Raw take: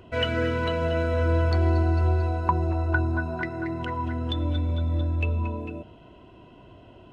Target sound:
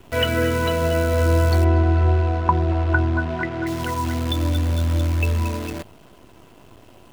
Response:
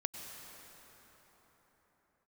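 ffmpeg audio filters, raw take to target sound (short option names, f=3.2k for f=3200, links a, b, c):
-filter_complex "[0:a]acrusher=bits=7:dc=4:mix=0:aa=0.000001,asettb=1/sr,asplit=3[a][b][c];[a]atrim=end=1.644[d];[b]atrim=start=1.64:end=3.67,asetpts=PTS-STARTPTS,afade=t=in:d=0.004:c=qsin,afade=t=out:st=2.026:d=0.004:c=qsin,lowpass=2.7k[e];[c]atrim=start=3.666[f];[d][e]acrossfade=d=0.004:c1=hsin:c2=qsin[g];[g][f]acrossfade=d=0.004:c1=qsin:c2=hsin,volume=5dB"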